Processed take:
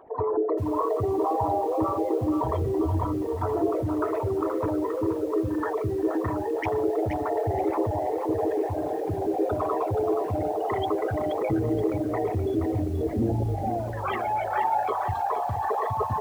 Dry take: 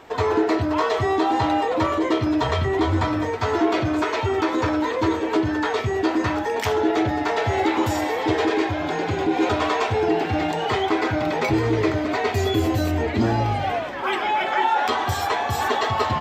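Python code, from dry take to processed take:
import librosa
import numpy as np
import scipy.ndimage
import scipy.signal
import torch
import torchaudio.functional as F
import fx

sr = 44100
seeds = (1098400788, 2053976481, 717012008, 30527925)

y = fx.envelope_sharpen(x, sr, power=3.0)
y = fx.echo_crushed(y, sr, ms=476, feedback_pct=35, bits=7, wet_db=-7.0)
y = y * 10.0 ** (-5.0 / 20.0)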